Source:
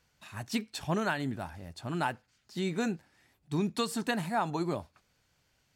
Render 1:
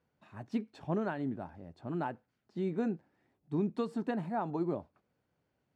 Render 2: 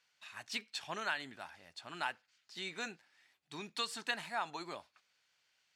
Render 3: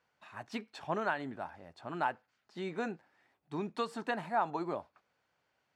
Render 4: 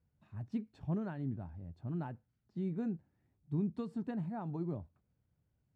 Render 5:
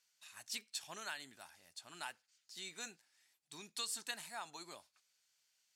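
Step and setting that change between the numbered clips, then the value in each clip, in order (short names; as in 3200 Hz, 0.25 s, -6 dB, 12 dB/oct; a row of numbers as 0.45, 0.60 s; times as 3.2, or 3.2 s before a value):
band-pass, frequency: 330, 3000, 870, 100, 7900 Hz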